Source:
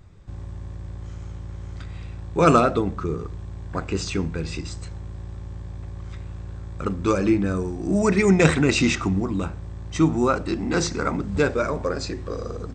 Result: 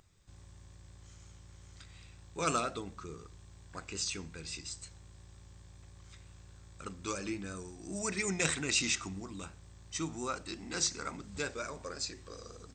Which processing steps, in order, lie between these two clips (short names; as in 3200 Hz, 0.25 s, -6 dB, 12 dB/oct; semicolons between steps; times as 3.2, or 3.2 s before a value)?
pre-emphasis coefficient 0.9; vibrato 5.6 Hz 28 cents